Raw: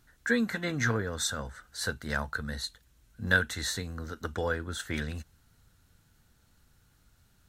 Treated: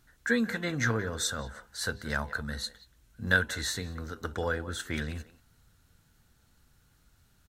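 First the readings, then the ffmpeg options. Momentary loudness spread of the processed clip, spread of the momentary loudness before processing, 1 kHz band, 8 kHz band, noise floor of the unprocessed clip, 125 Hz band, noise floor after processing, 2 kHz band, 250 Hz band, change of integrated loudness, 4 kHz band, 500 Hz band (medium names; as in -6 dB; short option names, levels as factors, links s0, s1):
12 LU, 12 LU, 0.0 dB, 0.0 dB, -66 dBFS, 0.0 dB, -66 dBFS, 0.0 dB, 0.0 dB, 0.0 dB, 0.0 dB, 0.0 dB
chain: -filter_complex "[0:a]bandreject=f=100.7:t=h:w=4,bandreject=f=201.4:t=h:w=4,bandreject=f=302.1:t=h:w=4,bandreject=f=402.8:t=h:w=4,bandreject=f=503.5:t=h:w=4,bandreject=f=604.2:t=h:w=4,bandreject=f=704.9:t=h:w=4,bandreject=f=805.6:t=h:w=4,bandreject=f=906.3:t=h:w=4,bandreject=f=1007:t=h:w=4,asplit=2[s0][s1];[s1]adelay=180,highpass=300,lowpass=3400,asoftclip=type=hard:threshold=0.119,volume=0.178[s2];[s0][s2]amix=inputs=2:normalize=0"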